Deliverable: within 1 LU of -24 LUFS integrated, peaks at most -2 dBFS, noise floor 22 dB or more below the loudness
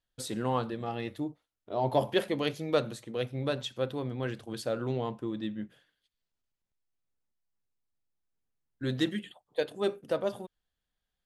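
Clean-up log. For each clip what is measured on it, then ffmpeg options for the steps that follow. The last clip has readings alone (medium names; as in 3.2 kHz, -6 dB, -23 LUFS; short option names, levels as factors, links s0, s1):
loudness -33.0 LUFS; peak level -13.5 dBFS; loudness target -24.0 LUFS
-> -af "volume=2.82"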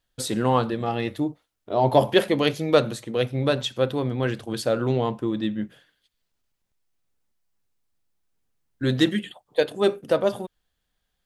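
loudness -24.0 LUFS; peak level -4.5 dBFS; noise floor -78 dBFS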